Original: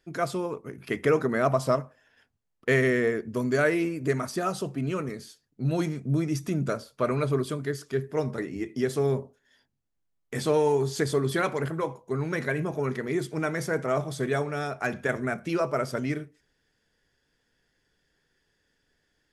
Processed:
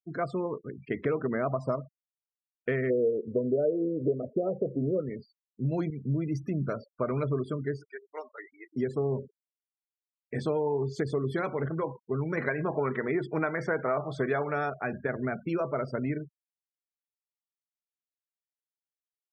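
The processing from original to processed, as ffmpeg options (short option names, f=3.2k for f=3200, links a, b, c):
-filter_complex "[0:a]asplit=3[a][b][c];[a]afade=t=out:st=2.89:d=0.02[d];[b]lowpass=f=510:t=q:w=4.7,afade=t=in:st=2.89:d=0.02,afade=t=out:st=4.99:d=0.02[e];[c]afade=t=in:st=4.99:d=0.02[f];[d][e][f]amix=inputs=3:normalize=0,asettb=1/sr,asplit=3[g][h][i];[g]atrim=end=5.904[j];[h]atrim=start=5.9:end=6.76,asetpts=PTS-STARTPTS,afade=t=in:d=0.004:c=qsin,afade=t=out:st=0.856:d=0.004:c=qsin,adynamicequalizer=threshold=0.0178:dfrequency=320:dqfactor=0.72:tfrequency=320:tqfactor=0.72:attack=5:release=100:ratio=0.375:range=2:mode=cutabove:tftype=bell[k];[i]atrim=start=6.756[l];[j][k]acrossfade=d=0.004:c1=hsin:c2=qsin[m];[m][l]acrossfade=d=0.004:c1=qsin:c2=hsin,asettb=1/sr,asplit=3[n][o][p];[n]atrim=end=7.894[q];[o]atrim=start=7.89:end=8.73,asetpts=PTS-STARTPTS,afade=t=in:d=0.004:c=qsin,afade=t=out:st=0.836:d=0.004:c=qsin,highpass=980[r];[p]atrim=start=8.726[s];[q][r]acrossfade=d=0.004:c1=hsin:c2=qsin[t];[t][s]acrossfade=d=0.004:c1=qsin:c2=hsin,asettb=1/sr,asplit=3[u][v][w];[u]atrim=end=12.374[x];[v]atrim=start=12.37:end=14.7,asetpts=PTS-STARTPTS,afade=t=in:d=0.004:c=qsin,afade=t=out:st=2.326:d=0.004:c=qsin,equalizer=f=1.3k:w=0.36:g=10.5[y];[w]atrim=start=14.696[z];[x][y]acrossfade=d=0.004:c1=hsin:c2=qsin[aa];[aa][z]acrossfade=d=0.004:c1=qsin:c2=hsin,acompressor=threshold=-25dB:ratio=4,afftfilt=real='re*gte(hypot(re,im),0.0141)':imag='im*gte(hypot(re,im),0.0141)':win_size=1024:overlap=0.75,lowpass=f=1.5k:p=1"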